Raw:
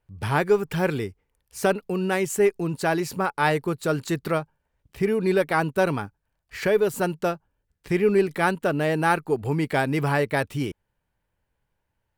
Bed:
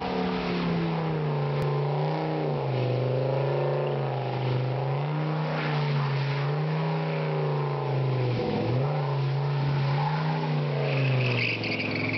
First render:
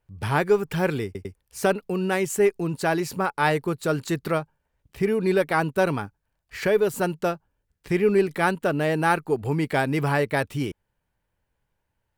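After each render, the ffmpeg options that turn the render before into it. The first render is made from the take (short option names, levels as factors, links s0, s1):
-filter_complex "[0:a]asplit=4[s0][s1][s2][s3];[s0]atrim=end=1.152[s4];[s1]atrim=start=1.048:end=1.152[s5];[s2]atrim=start=1.048:end=1.152[s6];[s3]atrim=start=1.348[s7];[s4][s5]acrossfade=d=0.004:c1=hsin:c2=hsin[s8];[s8][s6]acrossfade=d=0.004:c1=hsin:c2=hsin[s9];[s9][s7]acrossfade=d=0.004:c1=hsin:c2=hsin"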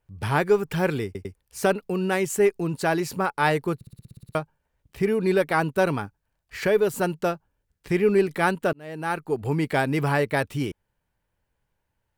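-filter_complex "[0:a]asplit=12[s0][s1][s2][s3][s4][s5][s6][s7][s8][s9][s10][s11];[s0]atrim=end=3.812[s12];[s1]atrim=start=3.748:end=3.812[s13];[s2]atrim=start=3.748:end=3.812[s14];[s3]atrim=start=3.748:end=3.812[s15];[s4]atrim=start=3.748:end=3.812[s16];[s5]atrim=start=3.748:end=3.812[s17];[s6]atrim=start=3.748:end=3.812[s18];[s7]atrim=start=3.748:end=3.812[s19];[s8]atrim=start=3.748:end=3.812[s20];[s9]atrim=start=3.748:end=3.812[s21];[s10]atrim=start=4.348:end=8.73,asetpts=PTS-STARTPTS,afade=t=out:st=4.378:d=0.004:c=hsin[s22];[s11]atrim=start=8.73,asetpts=PTS-STARTPTS,afade=t=in:d=0.76[s23];[s12][s13]acrossfade=d=0.004:c1=hsin:c2=hsin[s24];[s24][s14]acrossfade=d=0.004:c1=hsin:c2=hsin[s25];[s25][s15]acrossfade=d=0.004:c1=hsin:c2=hsin[s26];[s26][s16]acrossfade=d=0.004:c1=hsin:c2=hsin[s27];[s27][s17]acrossfade=d=0.004:c1=hsin:c2=hsin[s28];[s28][s18]acrossfade=d=0.004:c1=hsin:c2=hsin[s29];[s29][s19]acrossfade=d=0.004:c1=hsin:c2=hsin[s30];[s30][s20]acrossfade=d=0.004:c1=hsin:c2=hsin[s31];[s31][s21]acrossfade=d=0.004:c1=hsin:c2=hsin[s32];[s22][s23]concat=n=2:v=0:a=1[s33];[s32][s33]acrossfade=d=0.004:c1=hsin:c2=hsin"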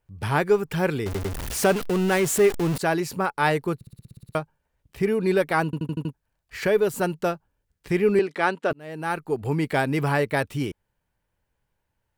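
-filter_complex "[0:a]asettb=1/sr,asplit=3[s0][s1][s2];[s0]atrim=end=1.064[s3];[s1]atrim=start=1.06:end=2.78,asetpts=PTS-STARTPTS,afade=t=in:d=0.004:c=qsin,afade=t=out:st=1.716:d=0.004:c=qsin,aeval=exprs='val(0)+0.5*0.0562*sgn(val(0))':c=same[s4];[s2]atrim=start=2.776[s5];[s3][s4]acrossfade=d=0.004:c1=hsin:c2=qsin[s6];[s6][s5]acrossfade=d=0.004:c1=qsin:c2=hsin,asettb=1/sr,asplit=3[s7][s8][s9];[s7]atrim=end=8.194[s10];[s8]atrim=start=8.19:end=8.71,asetpts=PTS-STARTPTS,afade=t=in:d=0.004:c=qsin,afade=t=out:st=0.516:d=0.004:c=qsin,highpass=280,lowpass=6000[s11];[s9]atrim=start=8.706[s12];[s10][s11]acrossfade=d=0.004:c1=hsin:c2=qsin[s13];[s13][s12]acrossfade=d=0.004:c1=qsin:c2=hsin,asplit=7[s14][s15][s16][s17][s18][s19][s20];[s14]atrim=end=5.732[s21];[s15]atrim=start=5.648:end=5.732[s22];[s16]atrim=start=5.648:end=5.732[s23];[s17]atrim=start=5.648:end=5.732[s24];[s18]atrim=start=5.648:end=5.732[s25];[s19]atrim=start=5.648:end=5.732[s26];[s20]atrim=start=6.128[s27];[s21][s22]acrossfade=d=0.004:c1=hsin:c2=hsin[s28];[s28][s23]acrossfade=d=0.004:c1=hsin:c2=hsin[s29];[s29][s24]acrossfade=d=0.004:c1=hsin:c2=hsin[s30];[s30][s25]acrossfade=d=0.004:c1=hsin:c2=hsin[s31];[s31][s26]acrossfade=d=0.004:c1=hsin:c2=hsin[s32];[s32][s27]acrossfade=d=0.004:c1=hsin:c2=hsin"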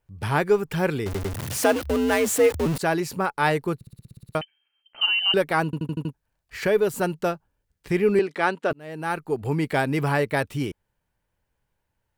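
-filter_complex "[0:a]asettb=1/sr,asplit=3[s0][s1][s2];[s0]atrim=end=1.344[s3];[s1]atrim=start=1.34:end=2.66,asetpts=PTS-STARTPTS,afade=t=in:d=0.004:c=qsin,afade=t=out:st=1.316:d=0.004:c=qsin,afreqshift=67[s4];[s2]atrim=start=2.656[s5];[s3][s4]acrossfade=d=0.004:c1=hsin:c2=qsin[s6];[s6][s5]acrossfade=d=0.004:c1=qsin:c2=hsin,asettb=1/sr,asplit=3[s7][s8][s9];[s7]atrim=end=4.414[s10];[s8]atrim=start=4.41:end=5.34,asetpts=PTS-STARTPTS,afade=t=in:d=0.004:c=qsin,afade=t=out:st=0.926:d=0.004:c=qsin,lowpass=f=2700:t=q:w=0.5098,lowpass=f=2700:t=q:w=0.6013,lowpass=f=2700:t=q:w=0.9,lowpass=f=2700:t=q:w=2.563,afreqshift=-3200[s11];[s9]atrim=start=5.336[s12];[s10][s11]acrossfade=d=0.004:c1=hsin:c2=qsin[s13];[s13][s12]acrossfade=d=0.004:c1=qsin:c2=hsin"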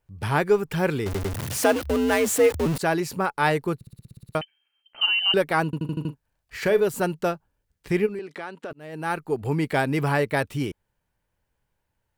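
-filter_complex "[0:a]asettb=1/sr,asplit=3[s0][s1][s2];[s0]atrim=end=0.874[s3];[s1]atrim=start=0.87:end=1.47,asetpts=PTS-STARTPTS,afade=t=in:d=0.004:c=qsin,afade=t=out:st=0.596:d=0.004:c=qsin,aeval=exprs='val(0)+0.5*0.0075*sgn(val(0))':c=same[s4];[s2]atrim=start=1.466[s5];[s3][s4]acrossfade=d=0.004:c1=hsin:c2=qsin[s6];[s6][s5]acrossfade=d=0.004:c1=qsin:c2=hsin,asettb=1/sr,asplit=3[s7][s8][s9];[s7]atrim=end=5.774[s10];[s8]atrim=start=5.77:end=6.85,asetpts=PTS-STARTPTS,afade=t=in:d=0.004:c=qsin,afade=t=out:st=1.076:d=0.004:c=qsin,asplit=2[s11][s12];[s12]adelay=40,volume=0.211[s13];[s11][s13]amix=inputs=2:normalize=0,atrim=end_sample=47628[s14];[s9]atrim=start=6.846[s15];[s10][s14]acrossfade=d=0.004:c1=hsin:c2=qsin[s16];[s16][s15]acrossfade=d=0.004:c1=qsin:c2=hsin,asplit=3[s17][s18][s19];[s17]afade=t=out:st=8.05:d=0.02[s20];[s18]acompressor=threshold=0.02:ratio=3:attack=3.2:release=140:knee=1:detection=peak,afade=t=in:st=8.05:d=0.02,afade=t=out:st=8.92:d=0.02[s21];[s19]afade=t=in:st=8.92:d=0.02[s22];[s20][s21][s22]amix=inputs=3:normalize=0"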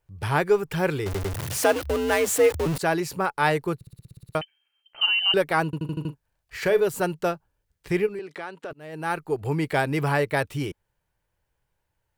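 -af "equalizer=f=230:t=o:w=0.26:g=-14"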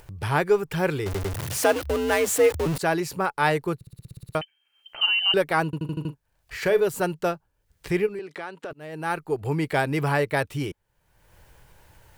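-af "acompressor=mode=upward:threshold=0.0224:ratio=2.5"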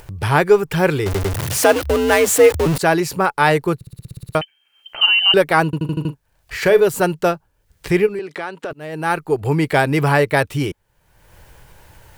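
-af "volume=2.51,alimiter=limit=0.891:level=0:latency=1"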